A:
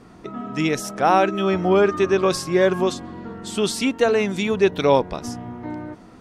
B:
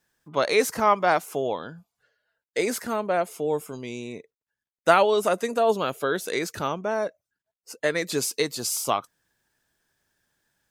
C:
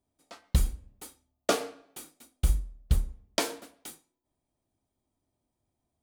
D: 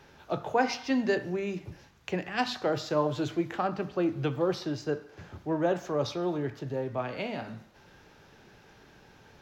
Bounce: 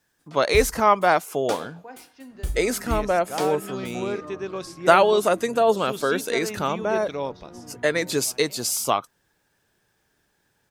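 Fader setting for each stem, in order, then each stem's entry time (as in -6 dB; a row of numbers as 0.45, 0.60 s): -13.0, +2.5, -4.0, -17.0 dB; 2.30, 0.00, 0.00, 1.30 s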